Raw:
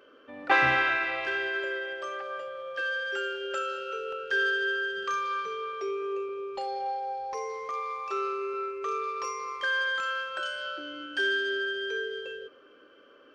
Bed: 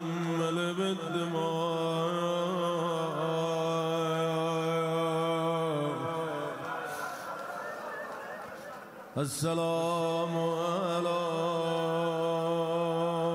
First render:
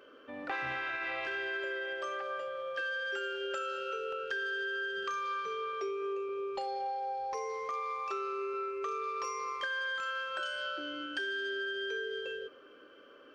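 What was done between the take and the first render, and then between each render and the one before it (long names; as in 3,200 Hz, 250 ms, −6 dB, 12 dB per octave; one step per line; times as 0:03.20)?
brickwall limiter −22.5 dBFS, peak gain reduction 11 dB
downward compressor, threshold −33 dBFS, peak gain reduction 6.5 dB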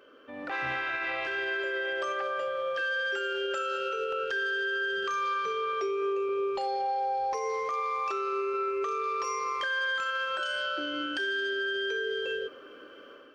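brickwall limiter −31 dBFS, peak gain reduction 6.5 dB
automatic gain control gain up to 7.5 dB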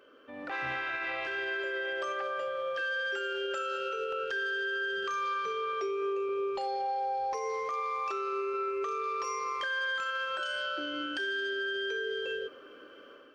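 level −2.5 dB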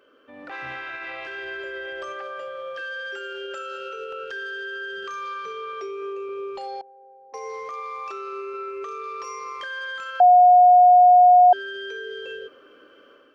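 0:01.44–0:02.17: low-shelf EQ 130 Hz +12 dB
0:06.81–0:07.34: four-pole ladder band-pass 310 Hz, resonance 50%
0:10.20–0:11.53: beep over 721 Hz −9 dBFS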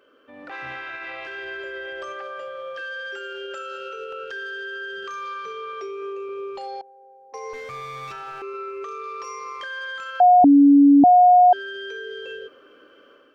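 0:07.53–0:08.42: lower of the sound and its delayed copy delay 9.1 ms
0:10.44–0:11.04: beep over 283 Hz −8.5 dBFS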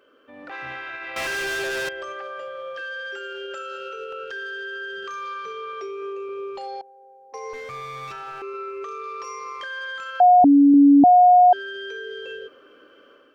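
0:01.16–0:01.89: leveller curve on the samples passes 5
0:10.26–0:10.74: notch filter 330 Hz, Q 6.3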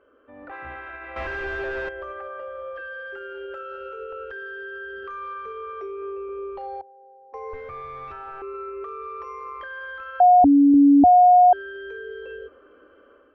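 low-pass filter 1,500 Hz 12 dB per octave
low shelf with overshoot 100 Hz +9 dB, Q 3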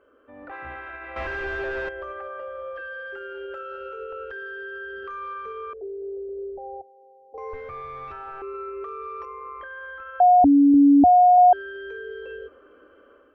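0:05.73–0:07.38: elliptic low-pass filter 750 Hz
0:09.25–0:11.38: high-frequency loss of the air 350 metres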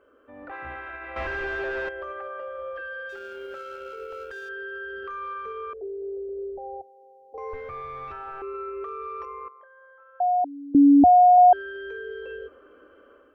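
0:01.45–0:02.59: low-shelf EQ 150 Hz −6 dB
0:03.09–0:04.49: mu-law and A-law mismatch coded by A
0:09.48–0:10.75: four-pole ladder band-pass 760 Hz, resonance 35%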